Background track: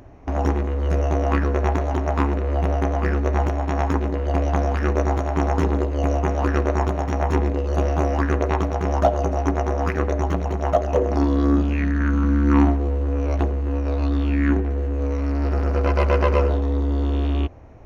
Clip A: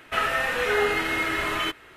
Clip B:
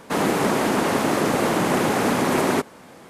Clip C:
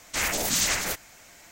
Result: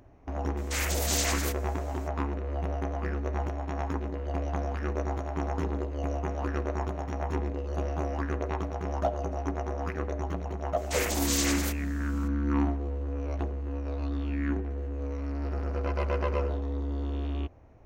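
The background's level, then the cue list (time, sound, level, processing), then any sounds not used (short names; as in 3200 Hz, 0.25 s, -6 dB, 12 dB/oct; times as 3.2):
background track -10.5 dB
0.57 add C -5 dB
10.77 add C -5 dB
not used: A, B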